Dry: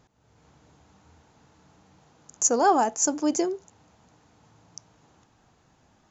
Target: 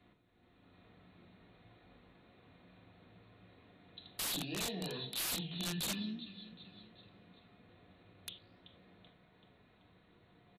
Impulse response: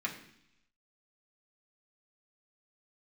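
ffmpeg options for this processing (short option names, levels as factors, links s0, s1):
-filter_complex "[0:a]flanger=delay=7:depth=9.2:regen=90:speed=1.4:shape=triangular,acrossover=split=160|3000[s0][s1][s2];[s1]acompressor=threshold=0.00794:ratio=4[s3];[s0][s3][s2]amix=inputs=3:normalize=0,asetrate=25442,aresample=44100,acrossover=split=1900[s4][s5];[s4]acompressor=threshold=0.01:ratio=16[s6];[s6][s5]amix=inputs=2:normalize=0,highshelf=f=6400:g=-4.5,aecho=1:1:383|766|1149|1532:0.158|0.0792|0.0396|0.0198[s7];[1:a]atrim=start_sample=2205,atrim=end_sample=4410[s8];[s7][s8]afir=irnorm=-1:irlink=0,aeval=exprs='(mod(37.6*val(0)+1,2)-1)/37.6':c=same,volume=1.12" -ar 32000 -c:a libmp3lame -b:a 112k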